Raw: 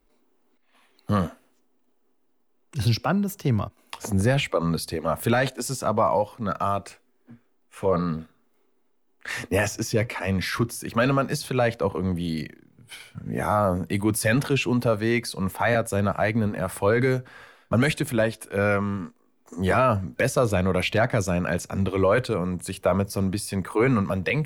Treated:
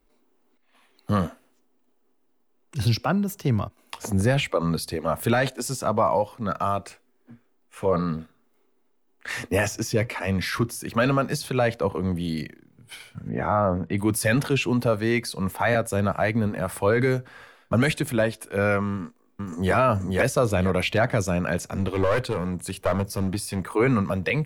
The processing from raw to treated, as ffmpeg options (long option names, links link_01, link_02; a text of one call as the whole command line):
ffmpeg -i in.wav -filter_complex "[0:a]asettb=1/sr,asplit=3[link_01][link_02][link_03];[link_01]atrim=end=13.294[link_04];[link_02]atrim=start=13.29:end=13.98,asetpts=PTS-STARTPTS,afade=type=in:duration=0.004:curve=qsin,afade=type=out:start_time=0.686:duration=0.004:curve=qsin,lowpass=2500[link_05];[link_03]atrim=start=13.976[link_06];[link_04][link_05]acrossfade=duration=0.004:curve1=hsin:curve2=qsin[link_07];[link_07][link_06]acrossfade=duration=0.004:curve1=qsin:curve2=hsin,asplit=2[link_08][link_09];[link_09]afade=type=in:start_time=18.91:duration=0.01,afade=type=out:start_time=19.74:duration=0.01,aecho=0:1:480|960|1440|1920:0.749894|0.224968|0.0674905|0.0202471[link_10];[link_08][link_10]amix=inputs=2:normalize=0,asettb=1/sr,asplit=3[link_11][link_12][link_13];[link_11]atrim=end=21.624[link_14];[link_12]atrim=start=21.62:end=23.75,asetpts=PTS-STARTPTS,afade=type=in:duration=0.004:curve=qsin,afade=type=out:start_time=2.126:duration=0.004:curve=qsin,aeval=exprs='clip(val(0),-1,0.0562)':channel_layout=same[link_15];[link_13]atrim=start=23.746[link_16];[link_14][link_15]acrossfade=duration=0.004:curve1=hsin:curve2=qsin[link_17];[link_17][link_16]acrossfade=duration=0.004:curve1=qsin:curve2=hsin" out.wav